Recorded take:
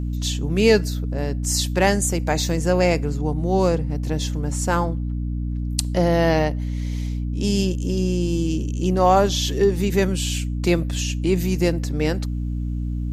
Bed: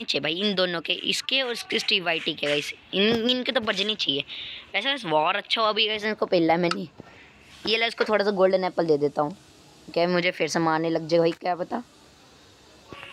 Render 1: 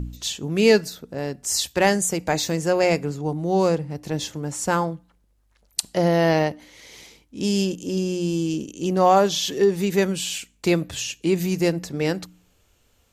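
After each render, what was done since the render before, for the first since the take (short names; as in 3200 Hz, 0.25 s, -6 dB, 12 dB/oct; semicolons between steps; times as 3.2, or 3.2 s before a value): de-hum 60 Hz, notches 5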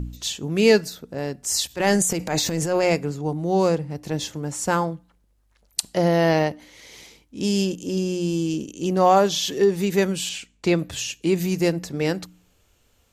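1.67–2.9 transient shaper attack -9 dB, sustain +8 dB; 10.29–10.79 air absorption 56 m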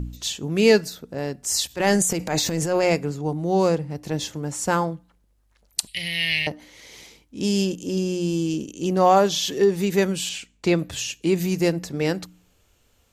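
5.87–6.47 EQ curve 110 Hz 0 dB, 230 Hz -24 dB, 730 Hz -28 dB, 1400 Hz -22 dB, 2200 Hz +14 dB, 3700 Hz +11 dB, 6500 Hz -12 dB, 9400 Hz +13 dB, 13000 Hz -1 dB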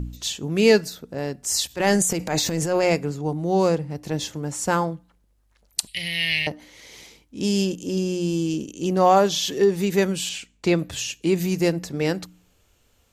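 nothing audible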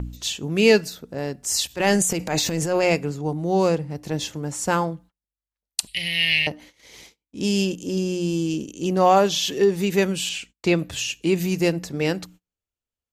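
gate -45 dBFS, range -31 dB; dynamic EQ 2700 Hz, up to +5 dB, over -42 dBFS, Q 3.6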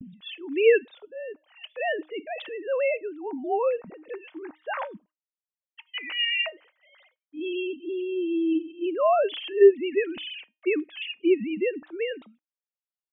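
sine-wave speech; resonator 310 Hz, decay 0.25 s, harmonics all, mix 40%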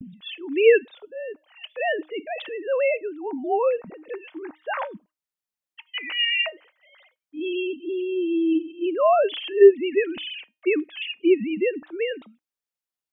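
gain +3 dB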